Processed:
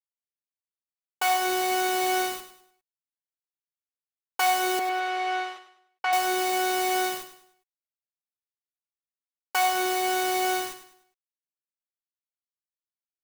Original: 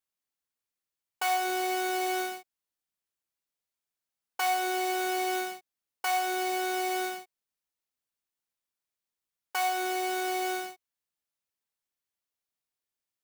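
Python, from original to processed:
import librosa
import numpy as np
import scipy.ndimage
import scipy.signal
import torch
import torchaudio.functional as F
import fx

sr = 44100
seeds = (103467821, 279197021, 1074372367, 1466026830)

p1 = fx.rider(x, sr, range_db=10, speed_s=0.5)
p2 = x + F.gain(torch.from_numpy(p1), 2.0).numpy()
p3 = fx.quant_dither(p2, sr, seeds[0], bits=6, dither='none')
p4 = fx.bandpass_edges(p3, sr, low_hz=540.0, high_hz=2900.0, at=(4.79, 6.13))
p5 = fx.echo_feedback(p4, sr, ms=101, feedback_pct=36, wet_db=-11.0)
y = F.gain(torch.from_numpy(p5), -1.5).numpy()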